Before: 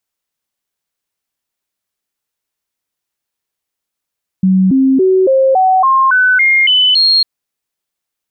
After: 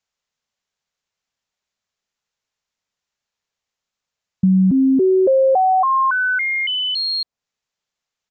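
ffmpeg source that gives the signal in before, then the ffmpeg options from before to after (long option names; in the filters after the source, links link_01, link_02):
-f lavfi -i "aevalsrc='0.473*clip(min(mod(t,0.28),0.28-mod(t,0.28))/0.005,0,1)*sin(2*PI*188*pow(2,floor(t/0.28)/2)*mod(t,0.28))':duration=2.8:sample_rate=44100"
-filter_complex "[0:a]equalizer=frequency=320:width_type=o:width=0.36:gain=-10,acrossover=split=450|910[link_01][link_02][link_03];[link_01]acompressor=threshold=-12dB:ratio=4[link_04];[link_02]acompressor=threshold=-21dB:ratio=4[link_05];[link_03]acompressor=threshold=-23dB:ratio=4[link_06];[link_04][link_05][link_06]amix=inputs=3:normalize=0,aresample=16000,aresample=44100"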